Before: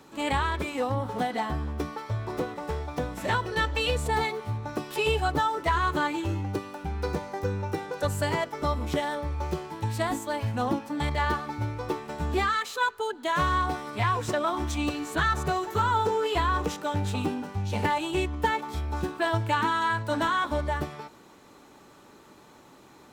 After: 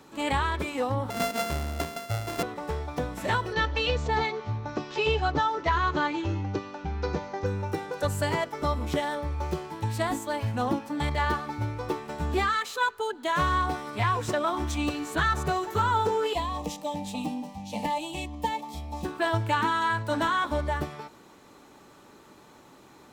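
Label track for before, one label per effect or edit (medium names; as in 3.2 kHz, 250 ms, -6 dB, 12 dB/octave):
1.100000	2.430000	sorted samples in blocks of 64 samples
3.530000	7.460000	steep low-pass 6.6 kHz 48 dB/octave
16.330000	19.050000	static phaser centre 390 Hz, stages 6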